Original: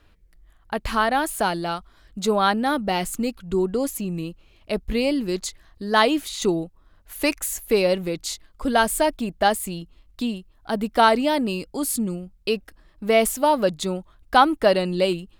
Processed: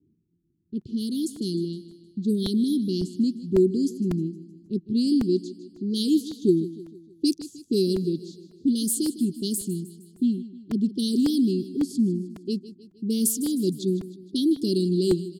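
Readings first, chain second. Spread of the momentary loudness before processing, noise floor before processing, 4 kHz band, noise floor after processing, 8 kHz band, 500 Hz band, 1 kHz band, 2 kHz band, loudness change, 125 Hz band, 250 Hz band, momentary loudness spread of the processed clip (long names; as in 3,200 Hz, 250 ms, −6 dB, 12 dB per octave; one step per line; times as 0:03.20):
13 LU, −57 dBFS, −5.5 dB, −64 dBFS, −2.5 dB, −6.0 dB, below −30 dB, below −25 dB, −2.5 dB, +2.5 dB, +3.0 dB, 11 LU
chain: high-pass filter 130 Hz 24 dB per octave
low-pass that shuts in the quiet parts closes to 440 Hz, open at −16.5 dBFS
Chebyshev band-stop filter 380–3,500 Hz, order 5
parametric band 3,700 Hz −11 dB 0.24 octaves
on a send: repeating echo 155 ms, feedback 50%, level −15.5 dB
on the sum: regular buffer underruns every 0.55 s, samples 128, repeat, from 0:00.81
level +3.5 dB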